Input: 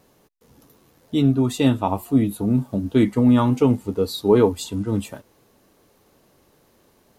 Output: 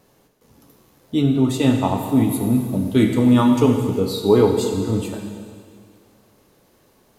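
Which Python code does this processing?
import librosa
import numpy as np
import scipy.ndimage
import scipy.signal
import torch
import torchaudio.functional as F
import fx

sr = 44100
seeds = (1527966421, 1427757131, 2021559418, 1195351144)

y = fx.high_shelf(x, sr, hz=3400.0, db=8.0, at=(2.09, 4.0))
y = fx.rev_plate(y, sr, seeds[0], rt60_s=2.1, hf_ratio=1.0, predelay_ms=0, drr_db=3.0)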